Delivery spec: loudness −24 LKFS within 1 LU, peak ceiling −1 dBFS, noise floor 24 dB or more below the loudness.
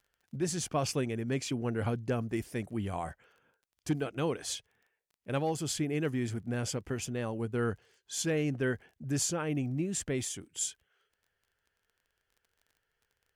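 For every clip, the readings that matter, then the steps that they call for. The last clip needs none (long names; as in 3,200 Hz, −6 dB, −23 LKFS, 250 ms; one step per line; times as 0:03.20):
crackle rate 18 per second; integrated loudness −34.0 LKFS; sample peak −19.0 dBFS; target loudness −24.0 LKFS
→ click removal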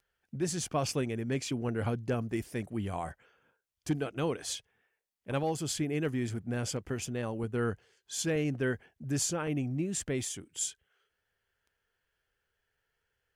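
crackle rate 0.075 per second; integrated loudness −34.0 LKFS; sample peak −19.0 dBFS; target loudness −24.0 LKFS
→ level +10 dB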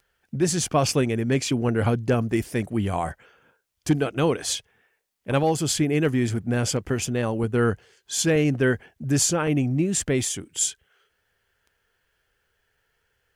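integrated loudness −24.0 LKFS; sample peak −9.0 dBFS; background noise floor −73 dBFS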